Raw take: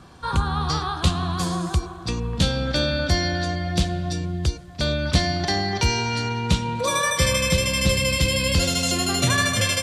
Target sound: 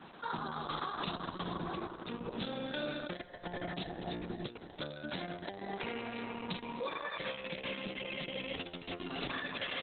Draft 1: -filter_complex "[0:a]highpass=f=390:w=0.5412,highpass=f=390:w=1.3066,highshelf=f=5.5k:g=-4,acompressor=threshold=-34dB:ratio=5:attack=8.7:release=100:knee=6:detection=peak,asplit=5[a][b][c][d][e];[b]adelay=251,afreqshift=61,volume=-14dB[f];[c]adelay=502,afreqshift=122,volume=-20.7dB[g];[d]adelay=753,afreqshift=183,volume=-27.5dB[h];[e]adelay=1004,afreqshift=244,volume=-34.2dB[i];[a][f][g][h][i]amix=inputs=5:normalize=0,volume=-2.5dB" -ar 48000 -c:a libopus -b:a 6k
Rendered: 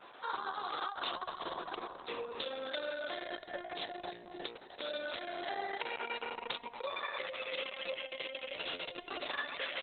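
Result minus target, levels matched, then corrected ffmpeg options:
250 Hz band -10.0 dB
-filter_complex "[0:a]highpass=f=190:w=0.5412,highpass=f=190:w=1.3066,highshelf=f=5.5k:g=-4,acompressor=threshold=-34dB:ratio=5:attack=8.7:release=100:knee=6:detection=peak,asplit=5[a][b][c][d][e];[b]adelay=251,afreqshift=61,volume=-14dB[f];[c]adelay=502,afreqshift=122,volume=-20.7dB[g];[d]adelay=753,afreqshift=183,volume=-27.5dB[h];[e]adelay=1004,afreqshift=244,volume=-34.2dB[i];[a][f][g][h][i]amix=inputs=5:normalize=0,volume=-2.5dB" -ar 48000 -c:a libopus -b:a 6k

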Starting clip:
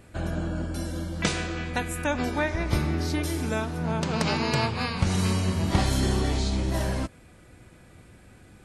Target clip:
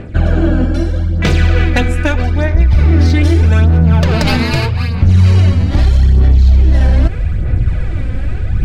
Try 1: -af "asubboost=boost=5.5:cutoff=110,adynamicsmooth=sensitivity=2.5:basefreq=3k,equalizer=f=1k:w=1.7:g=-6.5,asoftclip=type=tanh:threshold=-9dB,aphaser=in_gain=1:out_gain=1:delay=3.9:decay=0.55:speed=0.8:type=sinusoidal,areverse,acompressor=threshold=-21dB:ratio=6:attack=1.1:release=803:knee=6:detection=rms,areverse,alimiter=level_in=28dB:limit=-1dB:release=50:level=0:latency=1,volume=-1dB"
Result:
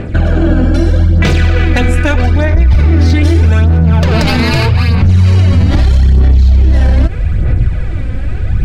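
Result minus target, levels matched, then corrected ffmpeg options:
compressor: peak gain reduction -8.5 dB
-af "asubboost=boost=5.5:cutoff=110,adynamicsmooth=sensitivity=2.5:basefreq=3k,equalizer=f=1k:w=1.7:g=-6.5,asoftclip=type=tanh:threshold=-9dB,aphaser=in_gain=1:out_gain=1:delay=3.9:decay=0.55:speed=0.8:type=sinusoidal,areverse,acompressor=threshold=-31.5dB:ratio=6:attack=1.1:release=803:knee=6:detection=rms,areverse,alimiter=level_in=28dB:limit=-1dB:release=50:level=0:latency=1,volume=-1dB"

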